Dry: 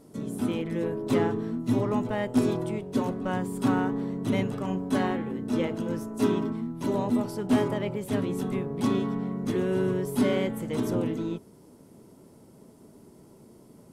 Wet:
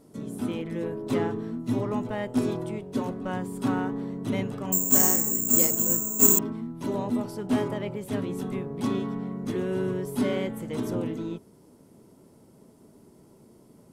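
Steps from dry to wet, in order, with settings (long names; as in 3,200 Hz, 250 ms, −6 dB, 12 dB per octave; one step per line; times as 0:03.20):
0:04.72–0:06.39: bad sample-rate conversion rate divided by 6×, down filtered, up zero stuff
level −2 dB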